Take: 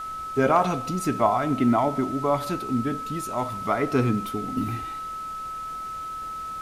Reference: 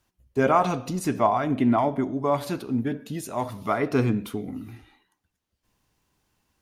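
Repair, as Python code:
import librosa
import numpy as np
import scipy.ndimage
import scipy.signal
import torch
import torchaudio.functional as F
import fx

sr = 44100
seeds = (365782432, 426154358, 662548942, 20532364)

y = fx.fix_declip(x, sr, threshold_db=-8.5)
y = fx.notch(y, sr, hz=1300.0, q=30.0)
y = fx.noise_reduce(y, sr, print_start_s=5.87, print_end_s=6.37, reduce_db=30.0)
y = fx.fix_level(y, sr, at_s=4.57, step_db=-11.0)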